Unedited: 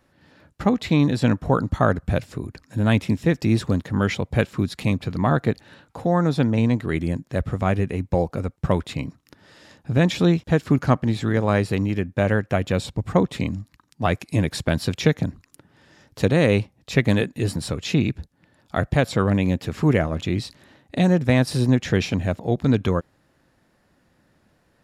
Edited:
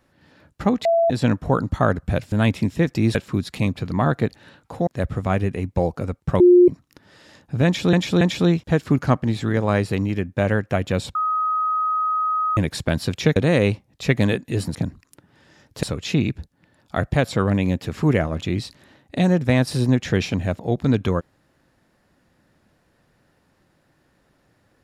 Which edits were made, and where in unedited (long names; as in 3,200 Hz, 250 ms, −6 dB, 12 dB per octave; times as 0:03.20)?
0:00.85–0:01.10: beep over 670 Hz −14 dBFS
0:02.32–0:02.79: remove
0:03.62–0:04.40: remove
0:06.12–0:07.23: remove
0:08.76–0:09.04: beep over 356 Hz −7.5 dBFS
0:10.01–0:10.29: repeat, 3 plays
0:12.95–0:14.37: beep over 1,260 Hz −18.5 dBFS
0:15.16–0:16.24: move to 0:17.63